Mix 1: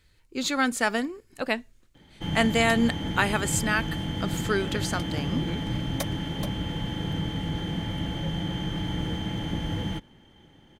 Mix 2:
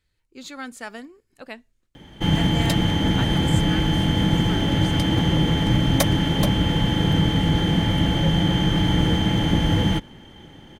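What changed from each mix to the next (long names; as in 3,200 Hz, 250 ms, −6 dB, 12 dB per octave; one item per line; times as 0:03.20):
speech −10.5 dB
background +10.5 dB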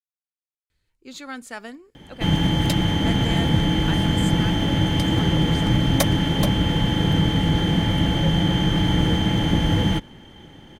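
speech: entry +0.70 s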